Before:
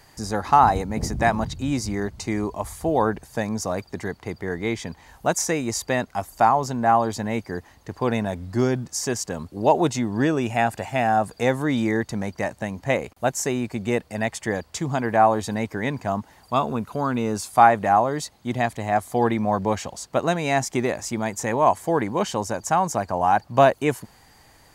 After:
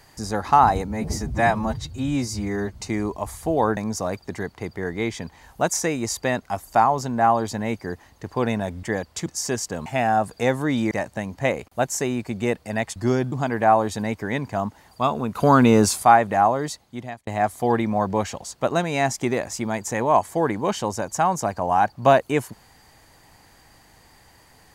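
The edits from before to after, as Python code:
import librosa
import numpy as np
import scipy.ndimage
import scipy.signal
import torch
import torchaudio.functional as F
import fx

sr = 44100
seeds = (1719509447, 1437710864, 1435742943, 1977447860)

y = fx.edit(x, sr, fx.stretch_span(start_s=0.88, length_s=1.24, factor=1.5),
    fx.cut(start_s=3.15, length_s=0.27),
    fx.swap(start_s=8.48, length_s=0.36, other_s=14.41, other_length_s=0.43),
    fx.cut(start_s=9.44, length_s=1.42),
    fx.cut(start_s=11.91, length_s=0.45),
    fx.clip_gain(start_s=16.87, length_s=0.68, db=9.5),
    fx.fade_out_span(start_s=18.17, length_s=0.62), tone=tone)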